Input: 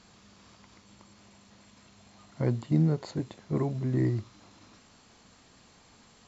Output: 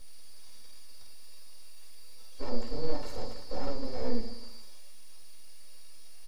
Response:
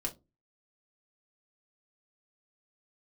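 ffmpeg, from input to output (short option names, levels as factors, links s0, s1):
-filter_complex "[0:a]equalizer=f=3900:t=o:w=0.77:g=-6.5,aecho=1:1:2.2:0.79,alimiter=level_in=1.19:limit=0.0631:level=0:latency=1:release=34,volume=0.841,aecho=1:1:50|112.5|190.6|288.3|410.4:0.631|0.398|0.251|0.158|0.1,aeval=exprs='val(0)+0.00562*sin(2*PI*4700*n/s)':c=same,aeval=exprs='abs(val(0))':c=same[s0];[1:a]atrim=start_sample=2205,asetrate=79380,aresample=44100[s1];[s0][s1]afir=irnorm=-1:irlink=0"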